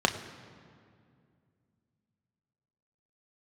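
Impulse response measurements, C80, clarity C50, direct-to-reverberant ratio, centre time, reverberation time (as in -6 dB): 11.5 dB, 11.0 dB, 4.0 dB, 20 ms, 2.3 s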